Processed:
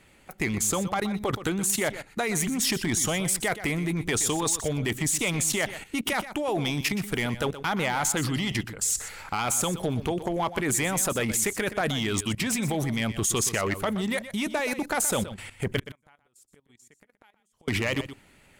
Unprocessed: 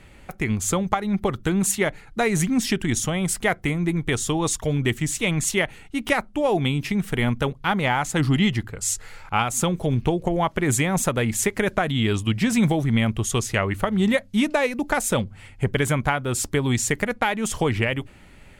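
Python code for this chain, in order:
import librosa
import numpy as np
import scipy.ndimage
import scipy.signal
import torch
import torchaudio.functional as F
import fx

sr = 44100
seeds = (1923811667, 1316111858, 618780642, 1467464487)

p1 = fx.low_shelf(x, sr, hz=100.0, db=-11.5)
p2 = fx.gate_flip(p1, sr, shuts_db=-19.0, range_db=-41, at=(15.77, 17.68))
p3 = fx.high_shelf(p2, sr, hz=6500.0, db=7.0)
p4 = fx.level_steps(p3, sr, step_db=16)
p5 = np.clip(p4, -10.0 ** (-26.5 / 20.0), 10.0 ** (-26.5 / 20.0))
p6 = fx.hpss(p5, sr, part='percussive', gain_db=4)
p7 = p6 + fx.echo_single(p6, sr, ms=123, db=-13.0, dry=0)
y = p7 * 10.0 ** (4.0 / 20.0)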